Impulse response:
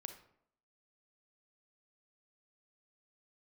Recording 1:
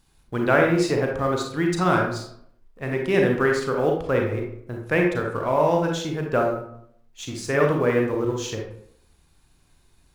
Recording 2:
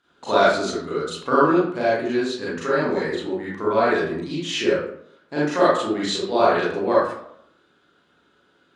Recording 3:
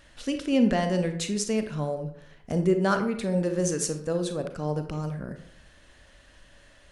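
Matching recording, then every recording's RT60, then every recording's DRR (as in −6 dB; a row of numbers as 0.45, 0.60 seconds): 3; 0.70, 0.70, 0.70 seconds; 0.5, −9.0, 7.0 decibels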